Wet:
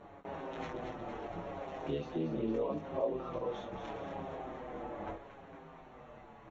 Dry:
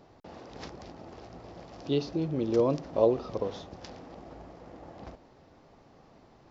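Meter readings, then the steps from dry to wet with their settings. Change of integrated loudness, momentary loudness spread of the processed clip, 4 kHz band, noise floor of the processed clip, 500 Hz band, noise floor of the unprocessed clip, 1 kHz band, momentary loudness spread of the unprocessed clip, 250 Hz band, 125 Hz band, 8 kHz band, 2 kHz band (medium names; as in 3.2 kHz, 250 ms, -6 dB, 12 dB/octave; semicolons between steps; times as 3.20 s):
-11.0 dB, 17 LU, -8.5 dB, -55 dBFS, -7.5 dB, -58 dBFS, -0.5 dB, 22 LU, -6.5 dB, -7.5 dB, no reading, +2.0 dB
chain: bass shelf 280 Hz -8.5 dB; in parallel at +0.5 dB: peak limiter -29.5 dBFS, peak gain reduction 16 dB; on the sum: compression 3:1, threshold -36 dBFS, peak gain reduction 13.5 dB; AM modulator 75 Hz, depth 95%; chorus voices 2, 0.36 Hz, delay 22 ms, depth 4.3 ms; boxcar filter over 9 samples; on a send: feedback echo behind a high-pass 231 ms, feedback 64%, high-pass 1.6 kHz, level -6.5 dB; on the sum: endless flanger 6.6 ms -0.78 Hz; trim +11.5 dB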